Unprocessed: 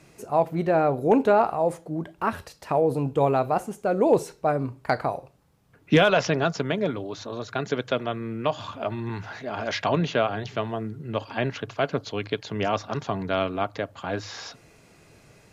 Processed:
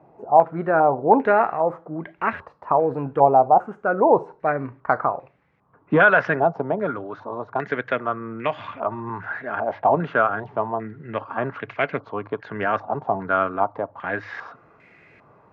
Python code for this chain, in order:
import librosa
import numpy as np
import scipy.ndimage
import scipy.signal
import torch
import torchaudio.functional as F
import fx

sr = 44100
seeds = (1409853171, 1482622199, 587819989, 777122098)

y = fx.highpass(x, sr, hz=150.0, slope=6)
y = fx.filter_held_lowpass(y, sr, hz=2.5, low_hz=820.0, high_hz=2100.0)